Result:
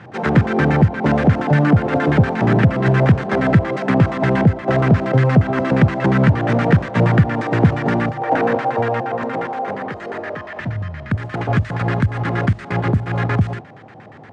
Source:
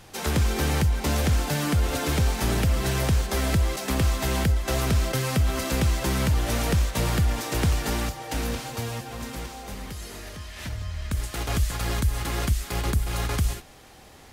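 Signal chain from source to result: elliptic band-pass 110–9100 Hz, stop band 40 dB; high shelf 2800 Hz +11 dB; LFO low-pass square 8.5 Hz 750–1700 Hz; bell 160 Hz +11.5 dB 3 oct, from 8.22 s 500 Hz, from 10.6 s 130 Hz; gain +3 dB

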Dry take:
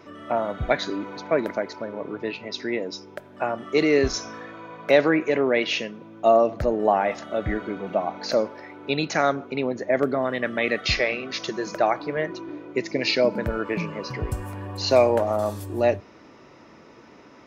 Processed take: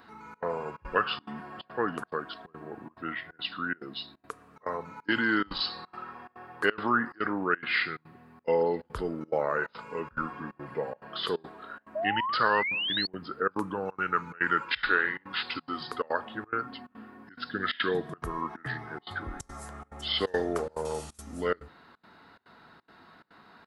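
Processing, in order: wide varispeed 0.738×; bell 1300 Hz +12 dB 1.2 oct; step gate "xxxx.xxxx." 177 bpm -24 dB; pre-emphasis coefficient 0.8; painted sound rise, 11.95–13.07, 600–4500 Hz -33 dBFS; gain +2.5 dB

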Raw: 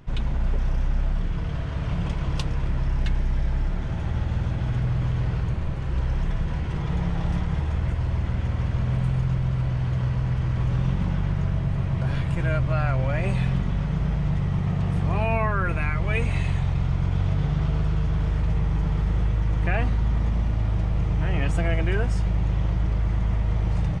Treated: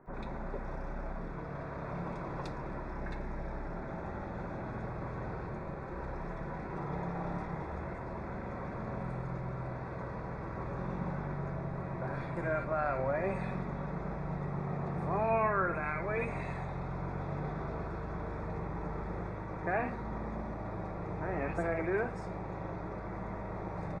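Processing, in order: Butterworth band-stop 3000 Hz, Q 3.1; three-band isolator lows -19 dB, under 250 Hz, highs -16 dB, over 2200 Hz; bands offset in time lows, highs 60 ms, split 2000 Hz; on a send at -10.5 dB: reverb RT60 0.60 s, pre-delay 5 ms; on the sum: gain -1.5 dB

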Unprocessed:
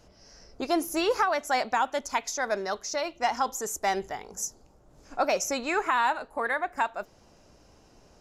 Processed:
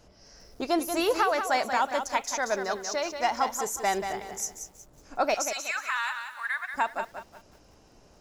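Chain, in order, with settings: 5.34–6.74 HPF 1300 Hz 24 dB/oct; lo-fi delay 0.184 s, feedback 35%, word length 9-bit, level -7.5 dB

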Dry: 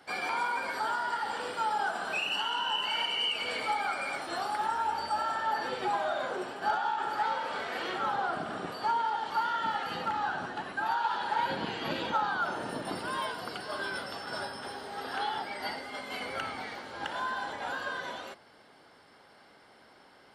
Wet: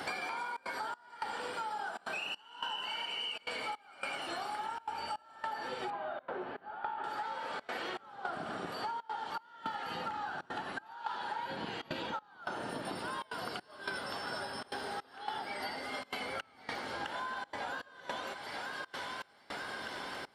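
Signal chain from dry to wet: thinning echo 0.937 s, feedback 59%, high-pass 980 Hz, level -13.5 dB; step gate "xxxxxx.xxx...xx" 160 bpm -24 dB; 5.9–7.04 air absorption 420 m; compressor 8:1, threshold -55 dBFS, peak gain reduction 28.5 dB; gain +17 dB

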